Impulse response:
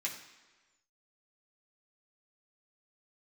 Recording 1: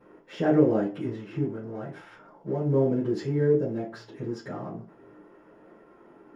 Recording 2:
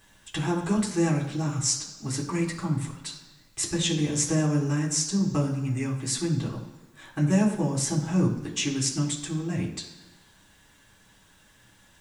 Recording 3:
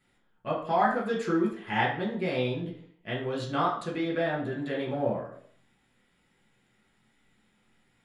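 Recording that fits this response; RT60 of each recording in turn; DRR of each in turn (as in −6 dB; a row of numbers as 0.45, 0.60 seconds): 2; 0.45, 1.3, 0.65 seconds; −12.0, −4.5, −5.0 decibels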